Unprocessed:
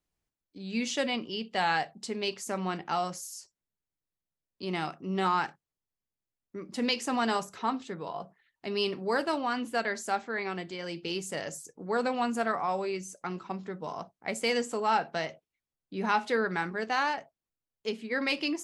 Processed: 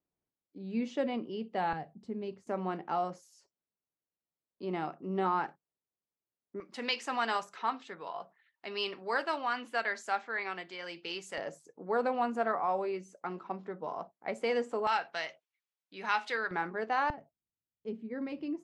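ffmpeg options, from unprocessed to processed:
-af "asetnsamples=n=441:p=0,asendcmd='1.73 bandpass f 140;2.47 bandpass f 470;6.6 bandpass f 1600;11.38 bandpass f 660;14.87 bandpass f 2400;16.51 bandpass f 670;17.1 bandpass f 130',bandpass=f=360:t=q:w=0.6:csg=0"

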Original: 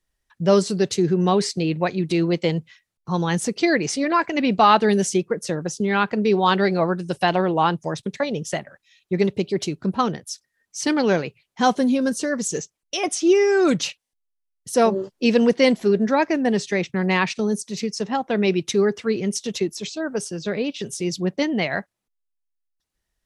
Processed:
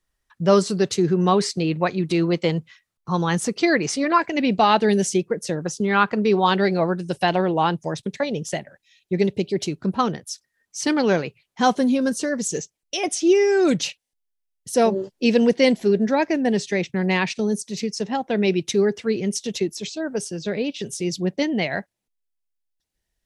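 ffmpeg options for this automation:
-af "asetnsamples=n=441:p=0,asendcmd='4.18 equalizer g -6;5.64 equalizer g 5.5;6.46 equalizer g -3.5;8.49 equalizer g -10.5;9.66 equalizer g 0;12.29 equalizer g -7',equalizer=f=1200:t=o:w=0.56:g=4.5"

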